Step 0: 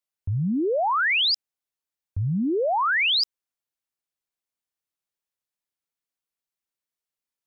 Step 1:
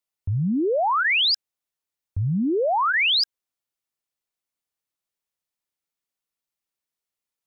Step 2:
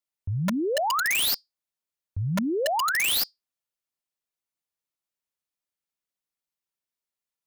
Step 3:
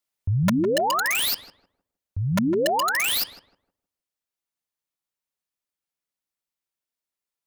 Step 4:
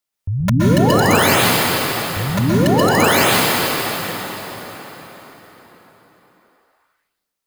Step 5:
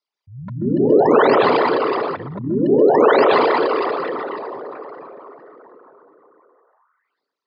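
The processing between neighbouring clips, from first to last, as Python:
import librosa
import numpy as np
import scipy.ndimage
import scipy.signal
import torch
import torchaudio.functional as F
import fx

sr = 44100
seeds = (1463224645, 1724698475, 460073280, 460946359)

y1 = fx.notch(x, sr, hz=1600.0, q=20.0)
y1 = y1 * 10.0 ** (1.5 / 20.0)
y2 = fx.comb_fb(y1, sr, f0_hz=190.0, decay_s=0.19, harmonics='odd', damping=0.0, mix_pct=40)
y2 = (np.mod(10.0 ** (20.5 / 20.0) * y2 + 1.0, 2.0) - 1.0) / 10.0 ** (20.5 / 20.0)
y3 = fx.rider(y2, sr, range_db=3, speed_s=0.5)
y3 = fx.echo_filtered(y3, sr, ms=156, feedback_pct=28, hz=1300.0, wet_db=-10.0)
y3 = y3 * 10.0 ** (3.0 / 20.0)
y4 = fx.rev_plate(y3, sr, seeds[0], rt60_s=4.8, hf_ratio=0.75, predelay_ms=110, drr_db=-7.0)
y4 = y4 * 10.0 ** (1.5 / 20.0)
y5 = fx.envelope_sharpen(y4, sr, power=3.0)
y5 = fx.cabinet(y5, sr, low_hz=170.0, low_slope=24, high_hz=5000.0, hz=(190.0, 420.0, 1000.0, 4600.0), db=(-10, 6, 5, 4))
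y5 = y5 * 10.0 ** (-1.0 / 20.0)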